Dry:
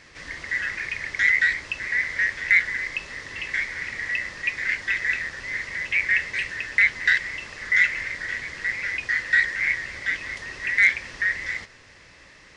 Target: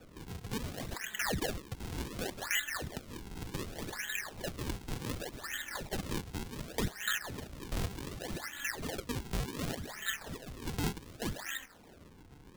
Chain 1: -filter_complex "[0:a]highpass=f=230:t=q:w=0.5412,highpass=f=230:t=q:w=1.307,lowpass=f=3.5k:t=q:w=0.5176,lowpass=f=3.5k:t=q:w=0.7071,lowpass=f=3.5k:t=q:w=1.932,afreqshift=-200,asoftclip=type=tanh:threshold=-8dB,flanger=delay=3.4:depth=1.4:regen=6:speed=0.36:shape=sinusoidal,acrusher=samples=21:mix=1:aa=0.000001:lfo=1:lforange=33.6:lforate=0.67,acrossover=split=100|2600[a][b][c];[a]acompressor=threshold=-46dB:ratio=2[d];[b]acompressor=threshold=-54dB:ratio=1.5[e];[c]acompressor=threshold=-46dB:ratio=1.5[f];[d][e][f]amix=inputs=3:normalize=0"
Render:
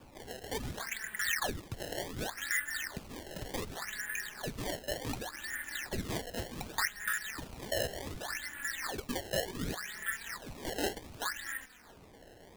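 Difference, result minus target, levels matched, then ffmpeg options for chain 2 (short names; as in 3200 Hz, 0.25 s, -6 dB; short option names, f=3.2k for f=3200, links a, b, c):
decimation with a swept rate: distortion -8 dB
-filter_complex "[0:a]highpass=f=230:t=q:w=0.5412,highpass=f=230:t=q:w=1.307,lowpass=f=3.5k:t=q:w=0.5176,lowpass=f=3.5k:t=q:w=0.7071,lowpass=f=3.5k:t=q:w=1.932,afreqshift=-200,asoftclip=type=tanh:threshold=-8dB,flanger=delay=3.4:depth=1.4:regen=6:speed=0.36:shape=sinusoidal,acrusher=samples=42:mix=1:aa=0.000001:lfo=1:lforange=67.2:lforate=0.67,acrossover=split=100|2600[a][b][c];[a]acompressor=threshold=-46dB:ratio=2[d];[b]acompressor=threshold=-54dB:ratio=1.5[e];[c]acompressor=threshold=-46dB:ratio=1.5[f];[d][e][f]amix=inputs=3:normalize=0"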